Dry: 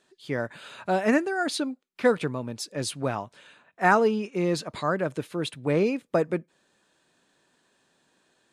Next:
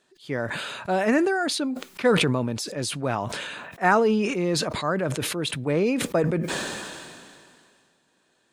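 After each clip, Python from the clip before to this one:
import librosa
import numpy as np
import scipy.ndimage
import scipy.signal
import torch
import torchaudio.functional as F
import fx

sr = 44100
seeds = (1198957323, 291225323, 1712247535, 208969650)

y = fx.sustainer(x, sr, db_per_s=27.0)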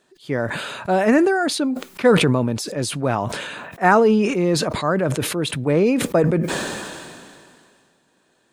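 y = fx.peak_eq(x, sr, hz=3900.0, db=-4.0, octaves=3.0)
y = y * librosa.db_to_amplitude(6.0)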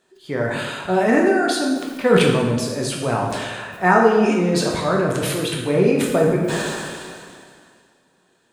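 y = fx.rev_plate(x, sr, seeds[0], rt60_s=1.3, hf_ratio=0.75, predelay_ms=0, drr_db=-1.5)
y = y * librosa.db_to_amplitude(-3.0)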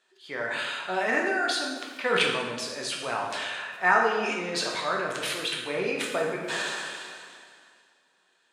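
y = fx.bandpass_q(x, sr, hz=2700.0, q=0.6)
y = y * librosa.db_to_amplitude(-1.0)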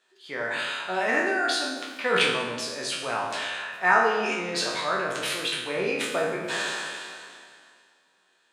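y = fx.spec_trails(x, sr, decay_s=0.41)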